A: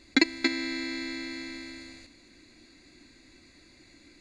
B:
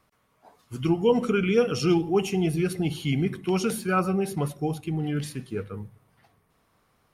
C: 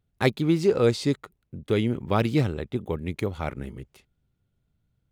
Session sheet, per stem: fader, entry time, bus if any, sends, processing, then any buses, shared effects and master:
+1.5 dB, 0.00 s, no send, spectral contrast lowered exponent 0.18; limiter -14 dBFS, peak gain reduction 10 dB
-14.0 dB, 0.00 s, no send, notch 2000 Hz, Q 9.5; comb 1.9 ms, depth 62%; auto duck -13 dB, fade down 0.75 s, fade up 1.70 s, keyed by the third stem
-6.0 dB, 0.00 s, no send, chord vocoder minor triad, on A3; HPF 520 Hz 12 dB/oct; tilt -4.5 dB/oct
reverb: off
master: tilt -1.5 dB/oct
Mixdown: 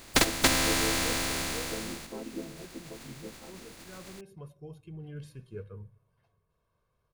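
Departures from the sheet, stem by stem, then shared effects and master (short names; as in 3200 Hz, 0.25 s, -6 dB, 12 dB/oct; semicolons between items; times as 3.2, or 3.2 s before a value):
stem A +1.5 dB -> +8.5 dB; stem C -6.0 dB -> -16.0 dB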